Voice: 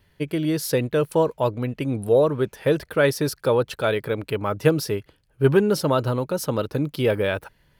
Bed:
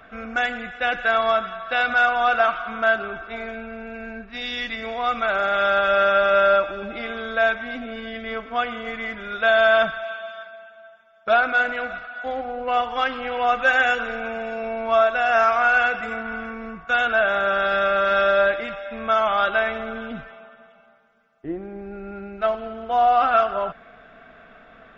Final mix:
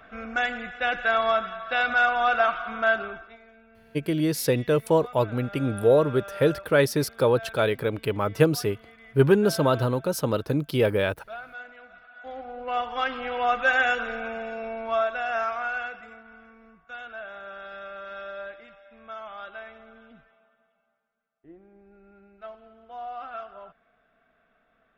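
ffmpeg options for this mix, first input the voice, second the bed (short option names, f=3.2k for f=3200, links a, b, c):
-filter_complex "[0:a]adelay=3750,volume=-1dB[a];[1:a]volume=14.5dB,afade=t=out:st=3.01:d=0.37:silence=0.125893,afade=t=in:st=11.87:d=1.31:silence=0.133352,afade=t=out:st=14.13:d=2.1:silence=0.158489[b];[a][b]amix=inputs=2:normalize=0"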